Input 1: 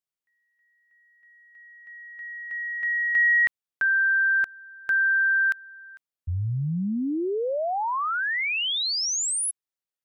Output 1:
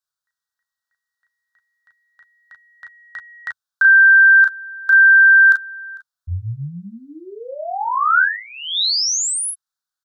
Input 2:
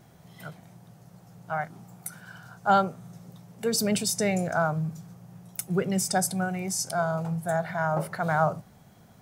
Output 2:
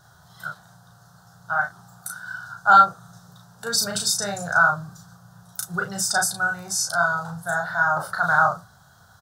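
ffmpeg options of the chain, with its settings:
-filter_complex "[0:a]firequalizer=gain_entry='entry(110,0);entry(250,-15);entry(730,0);entry(1500,13);entry(2200,-17);entry(3700,7);entry(11000,1)':delay=0.05:min_phase=1,asplit=2[a][b];[b]aecho=0:1:13|35|45:0.237|0.668|0.211[c];[a][c]amix=inputs=2:normalize=0"

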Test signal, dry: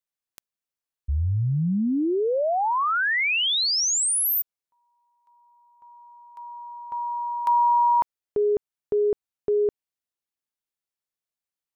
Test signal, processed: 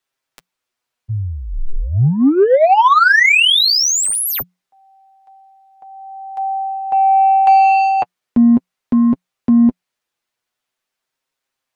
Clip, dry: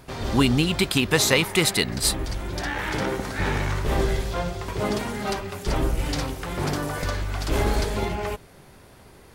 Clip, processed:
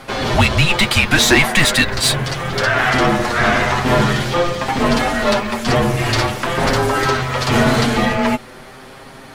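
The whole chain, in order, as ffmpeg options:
-filter_complex "[0:a]asplit=2[a][b];[b]highpass=f=720:p=1,volume=19dB,asoftclip=type=tanh:threshold=-5dB[c];[a][c]amix=inputs=2:normalize=0,lowpass=f=3.1k:p=1,volume=-6dB,afreqshift=-180,flanger=delay=7.4:depth=1:regen=18:speed=0.44:shape=triangular,acontrast=57,volume=1.5dB"

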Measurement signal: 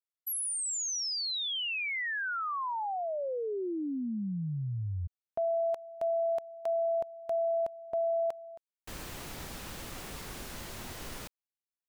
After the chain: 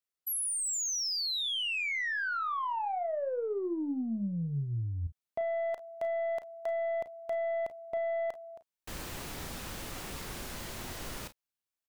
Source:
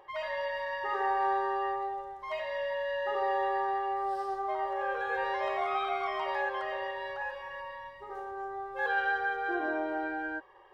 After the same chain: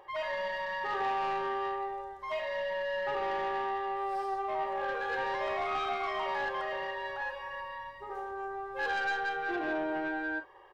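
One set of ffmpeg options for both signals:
-af "aeval=exprs='(tanh(25.1*val(0)+0.05)-tanh(0.05))/25.1':c=same,aecho=1:1:35|49:0.251|0.126,volume=1.5dB"

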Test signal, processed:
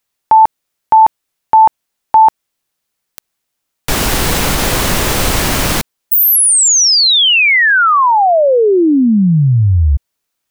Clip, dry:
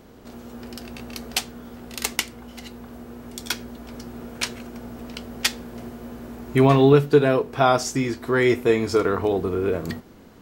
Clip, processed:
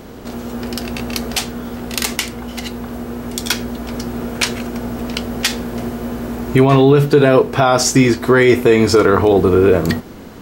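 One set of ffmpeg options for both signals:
-af "alimiter=level_in=14dB:limit=-1dB:release=50:level=0:latency=1,volume=-1dB"

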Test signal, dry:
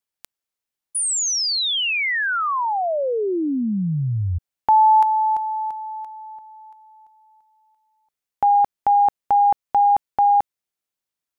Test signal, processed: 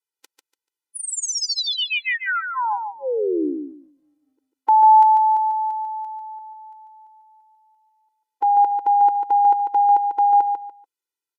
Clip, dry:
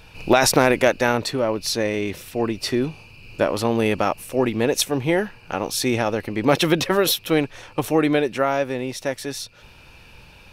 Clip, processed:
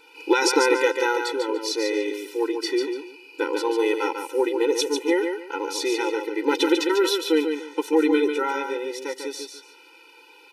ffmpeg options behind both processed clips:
-filter_complex "[0:a]aresample=32000,aresample=44100,acrossover=split=8800[a][b];[b]acompressor=threshold=-46dB:ratio=4:attack=1:release=60[c];[a][c]amix=inputs=2:normalize=0,asplit=2[d][e];[e]aecho=0:1:145|290|435:0.501|0.115|0.0265[f];[d][f]amix=inputs=2:normalize=0,afftfilt=real='re*eq(mod(floor(b*sr/1024/260),2),1)':imag='im*eq(mod(floor(b*sr/1024/260),2),1)':win_size=1024:overlap=0.75"

